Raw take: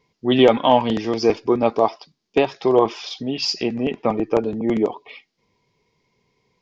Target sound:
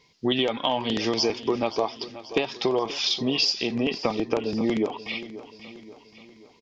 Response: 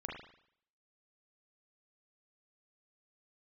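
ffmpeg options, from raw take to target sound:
-filter_complex "[0:a]equalizer=f=4400:w=0.56:g=10.5,acompressor=threshold=0.0794:ratio=12,asplit=2[s0][s1];[s1]aecho=0:1:532|1064|1596|2128|2660:0.178|0.0889|0.0445|0.0222|0.0111[s2];[s0][s2]amix=inputs=2:normalize=0,volume=1.19"

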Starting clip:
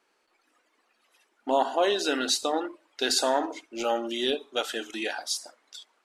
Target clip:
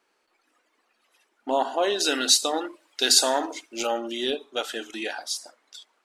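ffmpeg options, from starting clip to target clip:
-filter_complex "[0:a]asettb=1/sr,asplit=3[s0][s1][s2];[s0]atrim=end=2.004[s3];[s1]atrim=start=2:end=3.87,asetpts=PTS-STARTPTS,afade=t=in:d=0.004:c=qsin,afade=t=out:st=1.866:d=0.004:c=qsin,highshelf=f=3000:g=10.5[s4];[s2]atrim=start=3.866[s5];[s3][s4]acrossfade=d=0.004:c1=hsin:c2=qsin[s6];[s6][s5]acrossfade=d=0.004:c1=qsin:c2=hsin"

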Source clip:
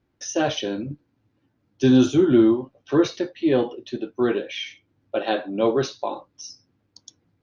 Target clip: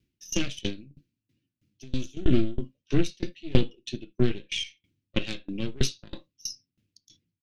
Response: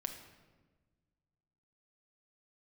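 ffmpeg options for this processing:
-filter_complex "[0:a]aeval=exprs='0.501*(cos(1*acos(clip(val(0)/0.501,-1,1)))-cos(1*PI/2))+0.158*(cos(4*acos(clip(val(0)/0.501,-1,1)))-cos(4*PI/2))+0.0126*(cos(7*acos(clip(val(0)/0.501,-1,1)))-cos(7*PI/2))':c=same,firequalizer=gain_entry='entry(200,0);entry(770,-23);entry(2700,10)':delay=0.05:min_phase=1,asettb=1/sr,asplit=3[s0][s1][s2];[s0]atrim=end=0.694[s3];[s1]atrim=start=0.69:end=2.17,asetpts=PTS-STARTPTS,afade=t=in:d=0.004:c=qsin,afade=t=out:st=1.476:d=0.004:c=qsin,acompressor=threshold=0.0224:ratio=2.5[s4];[s2]atrim=start=2.166[s5];[s3][s4]acrossfade=d=0.004:c1=hsin:c2=qsin[s6];[s6][s5]acrossfade=d=0.004:c1=qsin:c2=hsin,asplit=2[s7][s8];[s8]lowpass=4900[s9];[1:a]atrim=start_sample=2205,atrim=end_sample=3528,lowpass=3700[s10];[s9][s10]afir=irnorm=-1:irlink=0,volume=0.75[s11];[s7][s11]amix=inputs=2:normalize=0,aeval=exprs='val(0)*pow(10,-26*if(lt(mod(3.1*n/s,1),2*abs(3.1)/1000),1-mod(3.1*n/s,1)/(2*abs(3.1)/1000),(mod(3.1*n/s,1)-2*abs(3.1)/1000)/(1-2*abs(3.1)/1000))/20)':c=same"

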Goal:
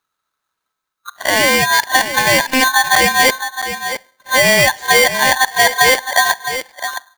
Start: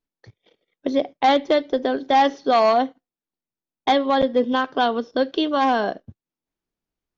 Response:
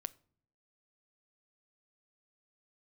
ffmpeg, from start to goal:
-filter_complex "[0:a]areverse,acompressor=threshold=0.126:ratio=6,aecho=1:1:663:0.316,asplit=2[s0][s1];[1:a]atrim=start_sample=2205[s2];[s1][s2]afir=irnorm=-1:irlink=0,volume=2.37[s3];[s0][s3]amix=inputs=2:normalize=0,aeval=exprs='val(0)*sgn(sin(2*PI*1300*n/s))':c=same,volume=1.12"

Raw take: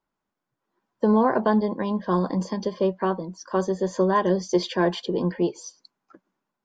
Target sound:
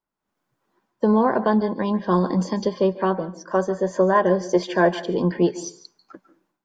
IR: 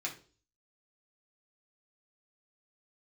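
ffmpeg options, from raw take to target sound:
-filter_complex "[0:a]asettb=1/sr,asplit=3[s0][s1][s2];[s0]atrim=end=3.144[s3];[s1]atrim=start=3.14:end=5.09,asetpts=PTS-STARTPTS,afade=t=in:d=0.004:c=qsin,afade=t=out:st=1.946:d=0.004:c=qsin,equalizer=f=630:t=o:w=0.67:g=7,equalizer=f=1600:t=o:w=0.67:g=6,equalizer=f=4000:t=o:w=0.67:g=-7[s4];[s2]atrim=start=5.086[s5];[s3][s4]acrossfade=d=0.004:c1=hsin:c2=qsin[s6];[s6][s5]acrossfade=d=0.004:c1=qsin:c2=hsin,dynaudnorm=f=190:g=3:m=5.01,asplit=2[s7][s8];[1:a]atrim=start_sample=2205,adelay=141[s9];[s8][s9]afir=irnorm=-1:irlink=0,volume=0.15[s10];[s7][s10]amix=inputs=2:normalize=0,volume=0.501"

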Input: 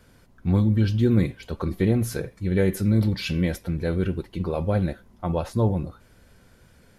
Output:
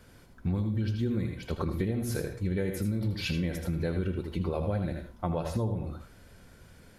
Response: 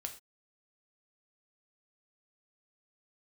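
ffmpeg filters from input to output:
-filter_complex "[0:a]asplit=2[s0][s1];[1:a]atrim=start_sample=2205,adelay=79[s2];[s1][s2]afir=irnorm=-1:irlink=0,volume=0.596[s3];[s0][s3]amix=inputs=2:normalize=0,acompressor=threshold=0.0447:ratio=6"

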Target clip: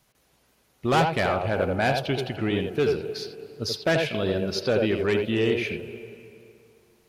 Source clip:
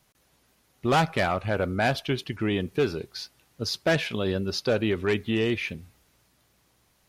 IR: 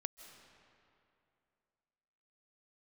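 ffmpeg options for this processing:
-filter_complex "[0:a]asplit=2[s0][s1];[s1]highpass=f=120:w=0.5412,highpass=f=120:w=1.3066,equalizer=f=180:t=q:w=4:g=-9,equalizer=f=270:t=q:w=4:g=-10,equalizer=f=450:t=q:w=4:g=4,equalizer=f=1200:t=q:w=4:g=-9,equalizer=f=1900:t=q:w=4:g=-9,equalizer=f=3500:t=q:w=4:g=-8,lowpass=f=3800:w=0.5412,lowpass=f=3800:w=1.3066[s2];[1:a]atrim=start_sample=2205,adelay=84[s3];[s2][s3]afir=irnorm=-1:irlink=0,volume=1.12[s4];[s0][s4]amix=inputs=2:normalize=0"

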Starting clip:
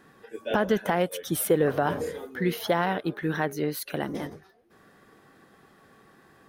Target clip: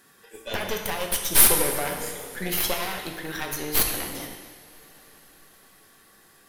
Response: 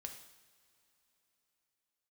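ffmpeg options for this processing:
-filter_complex "[0:a]crystalizer=i=7:c=0,aeval=exprs='1.5*(cos(1*acos(clip(val(0)/1.5,-1,1)))-cos(1*PI/2))+0.335*(cos(8*acos(clip(val(0)/1.5,-1,1)))-cos(8*PI/2))':c=same[s0];[1:a]atrim=start_sample=2205,asetrate=28224,aresample=44100[s1];[s0][s1]afir=irnorm=-1:irlink=0,volume=0.596"

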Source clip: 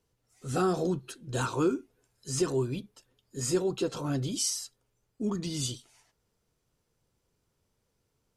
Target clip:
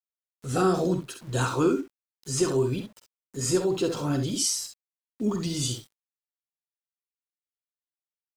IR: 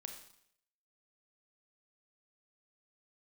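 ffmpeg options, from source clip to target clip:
-af "acontrast=48,aeval=exprs='val(0)*gte(abs(val(0)),0.00668)':c=same,aecho=1:1:48|66:0.299|0.376,volume=0.75"

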